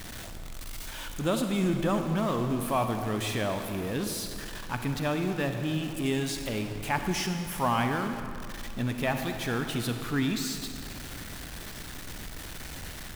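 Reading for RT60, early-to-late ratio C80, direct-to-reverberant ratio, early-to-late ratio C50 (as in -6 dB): 2.4 s, 7.0 dB, 5.5 dB, 6.0 dB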